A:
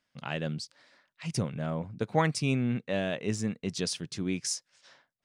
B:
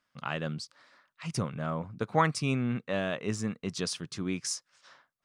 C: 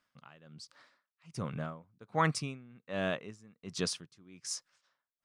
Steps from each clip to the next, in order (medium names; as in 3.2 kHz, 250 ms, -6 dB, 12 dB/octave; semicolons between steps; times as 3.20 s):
peaking EQ 1.2 kHz +9.5 dB 0.63 oct; trim -1.5 dB
logarithmic tremolo 1.3 Hz, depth 25 dB